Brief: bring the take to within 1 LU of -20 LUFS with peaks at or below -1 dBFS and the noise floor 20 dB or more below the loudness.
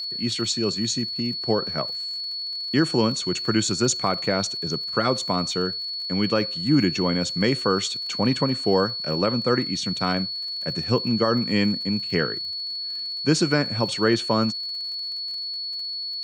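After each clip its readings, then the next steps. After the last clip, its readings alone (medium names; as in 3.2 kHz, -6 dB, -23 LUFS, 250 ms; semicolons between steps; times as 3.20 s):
tick rate 44 per s; steady tone 4.4 kHz; tone level -28 dBFS; loudness -23.5 LUFS; peak level -7.5 dBFS; loudness target -20.0 LUFS
-> de-click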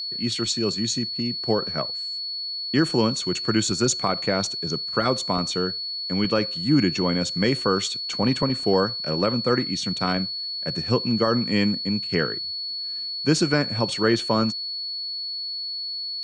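tick rate 0.062 per s; steady tone 4.4 kHz; tone level -28 dBFS
-> band-stop 4.4 kHz, Q 30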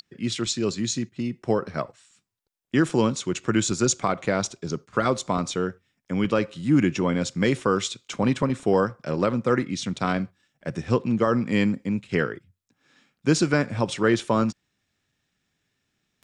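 steady tone not found; loudness -25.0 LUFS; peak level -8.5 dBFS; loudness target -20.0 LUFS
-> trim +5 dB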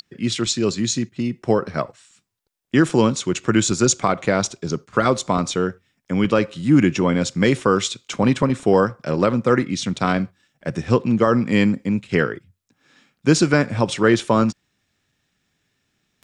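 loudness -20.0 LUFS; peak level -3.5 dBFS; noise floor -72 dBFS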